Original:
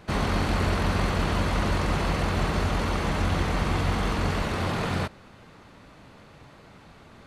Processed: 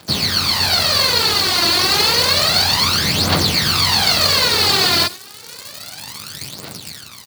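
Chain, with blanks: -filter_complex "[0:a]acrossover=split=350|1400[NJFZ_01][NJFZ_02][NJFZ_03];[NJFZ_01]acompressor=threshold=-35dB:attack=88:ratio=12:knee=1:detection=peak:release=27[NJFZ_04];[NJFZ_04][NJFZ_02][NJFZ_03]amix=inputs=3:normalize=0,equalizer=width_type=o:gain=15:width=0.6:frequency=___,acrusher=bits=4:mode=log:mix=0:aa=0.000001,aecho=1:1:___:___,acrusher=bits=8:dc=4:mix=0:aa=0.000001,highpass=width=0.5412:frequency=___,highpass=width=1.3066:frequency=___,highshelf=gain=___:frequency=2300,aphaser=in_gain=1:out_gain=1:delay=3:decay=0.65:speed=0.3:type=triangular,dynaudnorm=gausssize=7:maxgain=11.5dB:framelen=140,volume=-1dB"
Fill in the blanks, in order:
4500, 85, 0.0794, 90, 90, 10.5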